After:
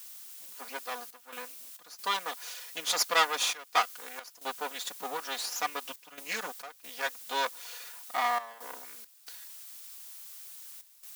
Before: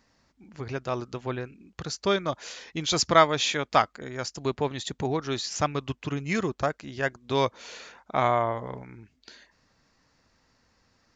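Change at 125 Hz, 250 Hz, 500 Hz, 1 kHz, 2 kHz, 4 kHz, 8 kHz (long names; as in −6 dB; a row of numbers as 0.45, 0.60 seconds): below −30 dB, −20.0 dB, −12.5 dB, −5.0 dB, −1.5 dB, −2.0 dB, −0.5 dB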